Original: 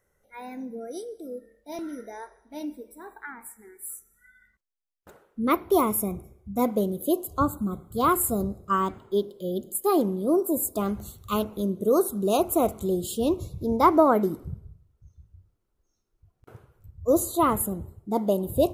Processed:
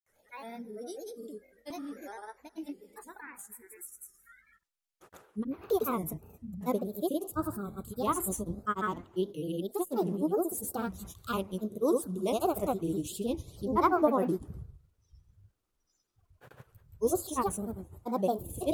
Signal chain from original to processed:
granular cloud, grains 20 per second, pitch spread up and down by 3 semitones
one half of a high-frequency compander encoder only
level −5.5 dB

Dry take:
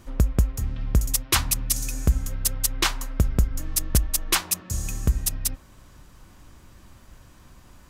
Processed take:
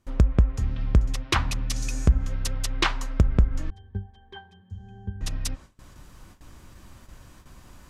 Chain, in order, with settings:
treble cut that deepens with the level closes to 1,800 Hz, closed at −16 dBFS
noise gate with hold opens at −40 dBFS
0:03.70–0:05.21: resonances in every octave G, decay 0.25 s
level +1.5 dB

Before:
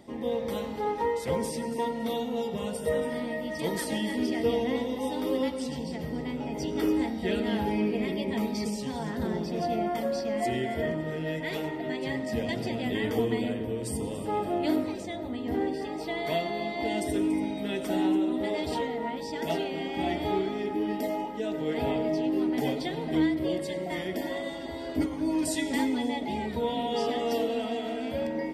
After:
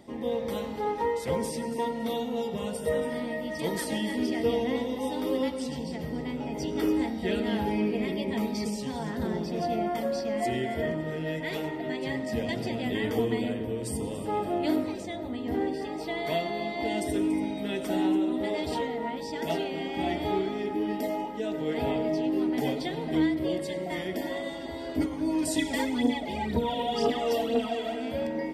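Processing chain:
0:25.56–0:27.95: phase shifter 2 Hz, delay 2.1 ms, feedback 57%

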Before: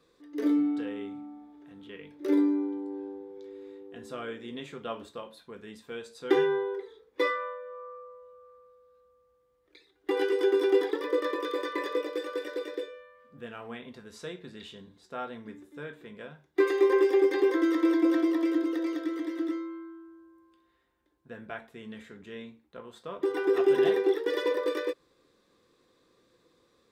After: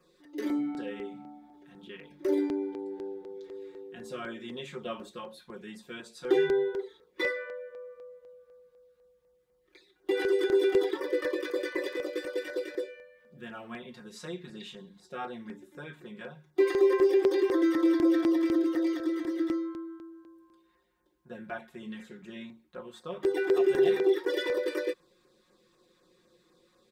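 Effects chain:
mains-hum notches 50/100/150/200 Hz
comb filter 5.5 ms, depth 99%
in parallel at +2 dB: brickwall limiter −19 dBFS, peak gain reduction 11 dB
on the sum: auto-filter notch saw down 4 Hz 330–4,200 Hz
level −8 dB

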